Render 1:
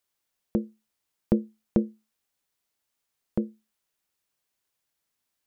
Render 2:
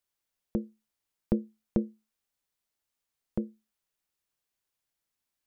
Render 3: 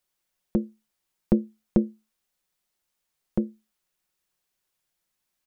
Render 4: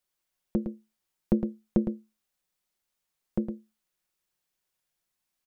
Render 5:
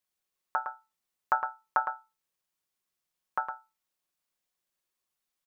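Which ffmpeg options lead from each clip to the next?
-af "lowshelf=f=65:g=7,volume=-5dB"
-af "aecho=1:1:5.5:0.35,volume=5dB"
-af "aecho=1:1:110:0.398,volume=-3.5dB"
-af "aeval=exprs='val(0)*sin(2*PI*1100*n/s)':c=same"

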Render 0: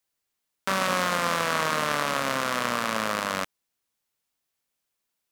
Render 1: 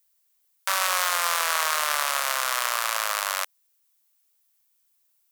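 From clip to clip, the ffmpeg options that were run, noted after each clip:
-af "highpass=f=670:w=0.5412,highpass=f=670:w=1.3066,aemphasis=mode=production:type=50kf"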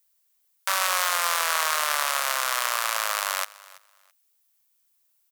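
-af "aecho=1:1:332|664:0.0891|0.0187"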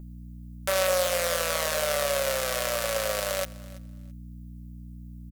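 -af "lowshelf=f=710:t=q:w=3:g=10,aeval=exprs='val(0)+0.0158*(sin(2*PI*60*n/s)+sin(2*PI*2*60*n/s)/2+sin(2*PI*3*60*n/s)/3+sin(2*PI*4*60*n/s)/4+sin(2*PI*5*60*n/s)/5)':c=same,aecho=1:1:5.3:0.46,volume=-4dB"

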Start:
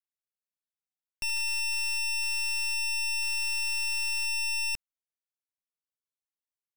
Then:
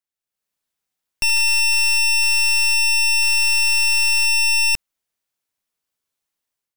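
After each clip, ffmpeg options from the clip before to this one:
-af "dynaudnorm=f=140:g=5:m=10dB,volume=3dB"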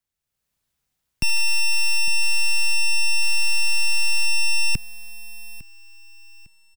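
-filter_complex "[0:a]acrossover=split=140[a][b];[a]aeval=exprs='0.0944*sin(PI/2*3.16*val(0)/0.0944)':c=same[c];[b]alimiter=limit=-21dB:level=0:latency=1[d];[c][d]amix=inputs=2:normalize=0,aecho=1:1:854|1708|2562:0.112|0.0381|0.013,volume=4dB"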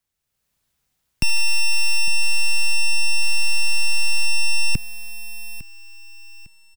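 -af "asoftclip=type=tanh:threshold=-11.5dB,volume=4.5dB"

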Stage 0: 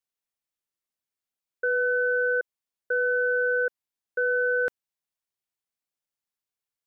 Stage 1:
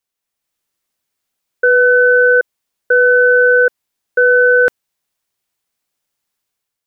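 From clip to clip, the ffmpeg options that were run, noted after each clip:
-af "dynaudnorm=f=160:g=5:m=6dB,volume=8.5dB"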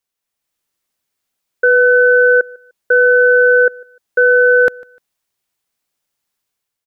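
-af "aecho=1:1:150|300:0.0631|0.0158"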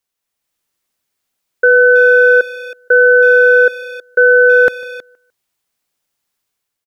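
-filter_complex "[0:a]asplit=2[a][b];[b]adelay=320,highpass=300,lowpass=3.4k,asoftclip=type=hard:threshold=-12dB,volume=-15dB[c];[a][c]amix=inputs=2:normalize=0,volume=2dB"

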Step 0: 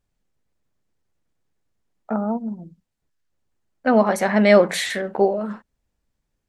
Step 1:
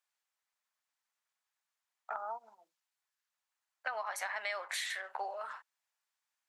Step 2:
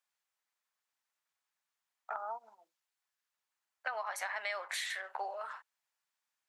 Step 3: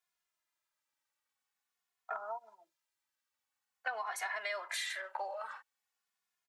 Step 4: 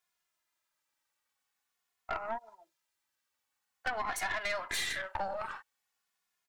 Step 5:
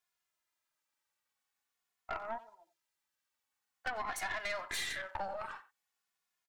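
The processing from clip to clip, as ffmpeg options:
-af "highpass=f=890:w=0.5412,highpass=f=890:w=1.3066,acompressor=threshold=-32dB:ratio=10,volume=-2.5dB"
-af "bass=f=250:g=-4,treble=f=4k:g=-1"
-filter_complex "[0:a]asplit=2[a][b];[b]adelay=2.4,afreqshift=-0.47[c];[a][c]amix=inputs=2:normalize=1,volume=3dB"
-af "aeval=exprs='(tanh(50.1*val(0)+0.65)-tanh(0.65))/50.1':c=same,volume=7.5dB"
-filter_complex "[0:a]asplit=2[a][b];[b]adelay=90,highpass=300,lowpass=3.4k,asoftclip=type=hard:threshold=-32dB,volume=-16dB[c];[a][c]amix=inputs=2:normalize=0,volume=-3.5dB"

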